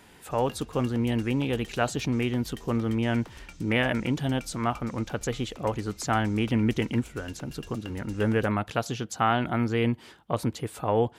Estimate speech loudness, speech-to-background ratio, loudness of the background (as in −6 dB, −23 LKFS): −28.5 LKFS, 19.0 dB, −47.5 LKFS